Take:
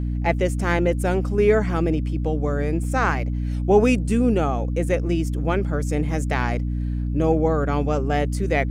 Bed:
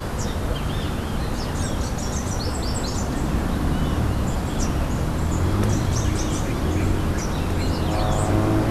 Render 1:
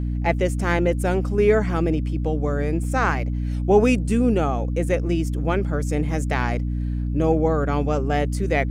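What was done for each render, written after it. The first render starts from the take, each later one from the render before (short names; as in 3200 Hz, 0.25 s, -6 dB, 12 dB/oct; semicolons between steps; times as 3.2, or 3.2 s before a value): nothing audible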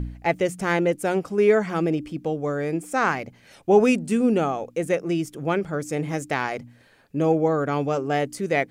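de-hum 60 Hz, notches 5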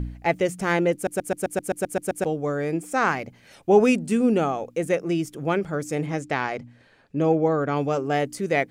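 0.94 stutter in place 0.13 s, 10 plays; 6.06–7.77 air absorption 58 m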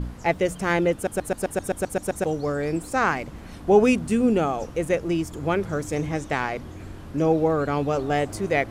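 add bed -17.5 dB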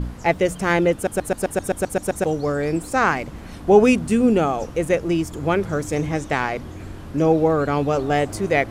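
gain +3.5 dB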